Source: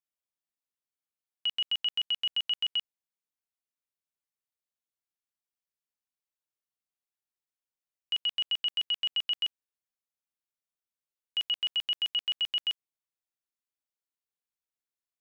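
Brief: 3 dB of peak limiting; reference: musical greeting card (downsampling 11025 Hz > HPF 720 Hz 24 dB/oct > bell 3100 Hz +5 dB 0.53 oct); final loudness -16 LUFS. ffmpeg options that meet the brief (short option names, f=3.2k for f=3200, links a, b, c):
-af "alimiter=level_in=3dB:limit=-24dB:level=0:latency=1,volume=-3dB,aresample=11025,aresample=44100,highpass=f=720:w=0.5412,highpass=f=720:w=1.3066,equalizer=f=3.1k:t=o:w=0.53:g=5,volume=12dB"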